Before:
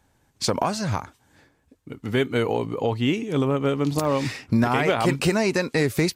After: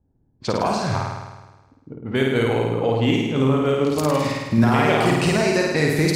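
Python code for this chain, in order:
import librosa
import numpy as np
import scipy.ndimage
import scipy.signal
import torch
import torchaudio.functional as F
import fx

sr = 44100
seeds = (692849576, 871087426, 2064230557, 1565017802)

y = fx.env_lowpass(x, sr, base_hz=320.0, full_db=-19.0)
y = fx.room_flutter(y, sr, wall_m=9.0, rt60_s=1.2)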